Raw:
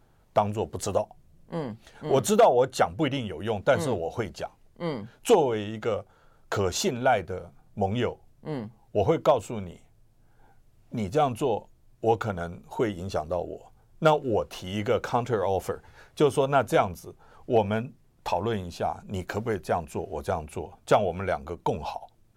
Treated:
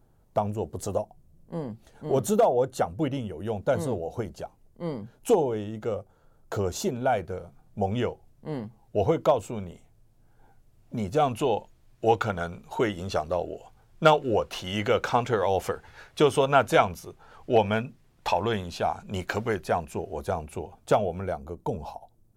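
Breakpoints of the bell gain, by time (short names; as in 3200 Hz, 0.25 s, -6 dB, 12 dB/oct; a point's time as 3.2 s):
bell 2500 Hz 2.8 oct
6.91 s -9.5 dB
7.33 s -2.5 dB
11.05 s -2.5 dB
11.49 s +5.5 dB
19.45 s +5.5 dB
20.1 s -2 dB
20.79 s -2 dB
21.47 s -13 dB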